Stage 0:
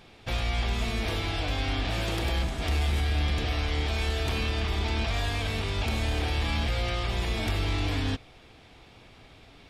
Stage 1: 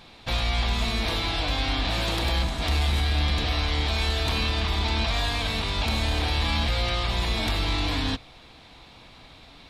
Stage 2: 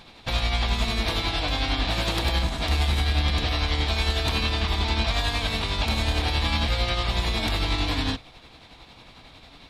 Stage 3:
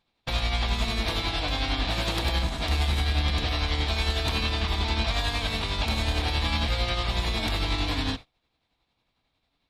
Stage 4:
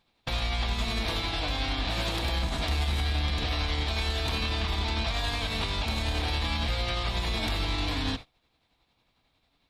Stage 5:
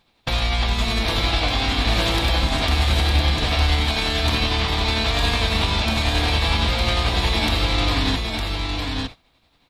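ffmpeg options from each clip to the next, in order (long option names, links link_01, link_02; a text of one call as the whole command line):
ffmpeg -i in.wav -af "equalizer=frequency=100:width_type=o:width=0.33:gain=-6,equalizer=frequency=400:width_type=o:width=0.33:gain=-6,equalizer=frequency=1000:width_type=o:width=0.33:gain=5,equalizer=frequency=4000:width_type=o:width=0.33:gain=8,volume=3dB" out.wav
ffmpeg -i in.wav -af "tremolo=f=11:d=0.41,volume=2.5dB" out.wav
ffmpeg -i in.wav -af "agate=range=-25dB:threshold=-35dB:ratio=16:detection=peak,volume=-2dB" out.wav
ffmpeg -i in.wav -af "alimiter=limit=-24dB:level=0:latency=1:release=129,volume=4dB" out.wav
ffmpeg -i in.wav -af "aecho=1:1:908:0.631,volume=8dB" out.wav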